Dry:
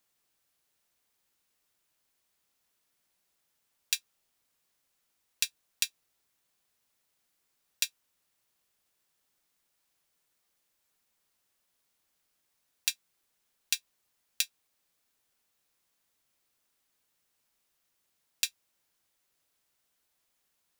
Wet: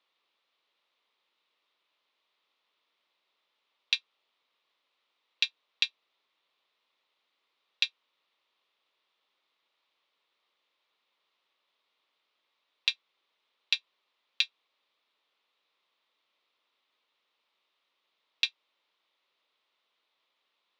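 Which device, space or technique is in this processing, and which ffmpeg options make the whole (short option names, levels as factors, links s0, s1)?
phone earpiece: -af "highpass=460,equalizer=f=740:t=q:w=4:g=-5,equalizer=f=1100:t=q:w=4:g=3,equalizer=f=1600:t=q:w=4:g=-8,equalizer=f=3700:t=q:w=4:g=5,lowpass=f=3700:w=0.5412,lowpass=f=3700:w=1.3066,volume=2"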